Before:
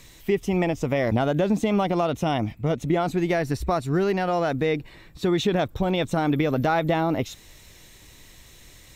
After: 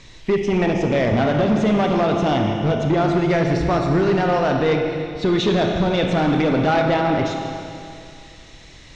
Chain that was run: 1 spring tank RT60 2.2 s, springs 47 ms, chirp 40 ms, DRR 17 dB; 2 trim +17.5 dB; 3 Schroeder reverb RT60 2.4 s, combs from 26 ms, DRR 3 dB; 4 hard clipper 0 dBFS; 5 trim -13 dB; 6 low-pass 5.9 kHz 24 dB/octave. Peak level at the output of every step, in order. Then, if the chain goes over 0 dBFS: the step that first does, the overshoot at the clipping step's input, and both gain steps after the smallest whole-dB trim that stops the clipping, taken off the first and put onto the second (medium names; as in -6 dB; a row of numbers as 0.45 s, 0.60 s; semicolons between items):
-9.5 dBFS, +8.0 dBFS, +9.5 dBFS, 0.0 dBFS, -13.0 dBFS, -12.0 dBFS; step 2, 9.5 dB; step 2 +7.5 dB, step 5 -3 dB